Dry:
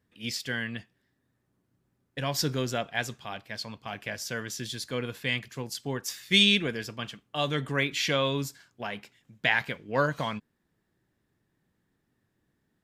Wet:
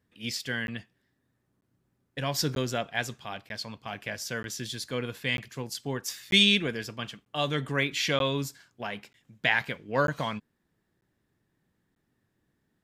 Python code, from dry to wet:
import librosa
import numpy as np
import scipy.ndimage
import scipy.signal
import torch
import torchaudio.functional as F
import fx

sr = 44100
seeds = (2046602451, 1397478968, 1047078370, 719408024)

y = fx.buffer_crackle(x, sr, first_s=0.67, period_s=0.94, block=512, kind='zero')